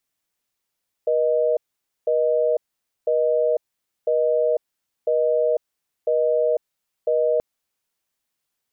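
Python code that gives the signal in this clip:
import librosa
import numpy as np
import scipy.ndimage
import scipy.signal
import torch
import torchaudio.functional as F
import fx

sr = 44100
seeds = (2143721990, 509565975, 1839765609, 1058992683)

y = fx.call_progress(sr, length_s=6.33, kind='busy tone', level_db=-19.5)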